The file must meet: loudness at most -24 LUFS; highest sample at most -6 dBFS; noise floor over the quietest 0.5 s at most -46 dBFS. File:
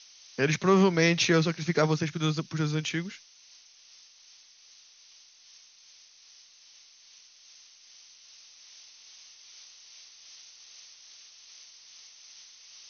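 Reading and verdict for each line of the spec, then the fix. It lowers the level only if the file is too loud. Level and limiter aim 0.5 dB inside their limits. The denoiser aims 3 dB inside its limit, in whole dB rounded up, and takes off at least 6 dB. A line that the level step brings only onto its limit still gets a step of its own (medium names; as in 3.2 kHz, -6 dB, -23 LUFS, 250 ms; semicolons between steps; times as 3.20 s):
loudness -26.0 LUFS: pass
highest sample -10.5 dBFS: pass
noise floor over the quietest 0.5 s -56 dBFS: pass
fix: none needed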